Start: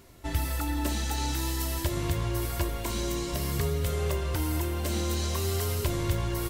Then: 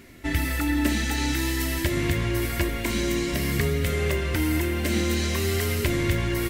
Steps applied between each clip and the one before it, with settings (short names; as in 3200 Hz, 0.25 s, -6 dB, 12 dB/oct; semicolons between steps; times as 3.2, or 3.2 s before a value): graphic EQ 250/1000/2000 Hz +9/-5/+12 dB; gain +2 dB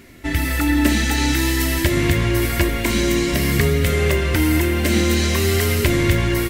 AGC gain up to 3.5 dB; gain +3.5 dB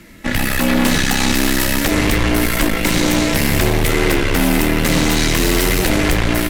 added harmonics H 5 -11 dB, 8 -8 dB, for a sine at -3.5 dBFS; frequency shift -47 Hz; gain -4.5 dB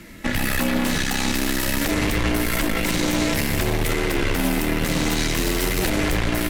limiter -12 dBFS, peak gain reduction 10 dB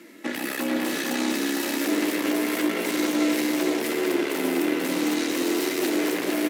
ladder high-pass 270 Hz, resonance 50%; echo 0.454 s -3 dB; gain +3 dB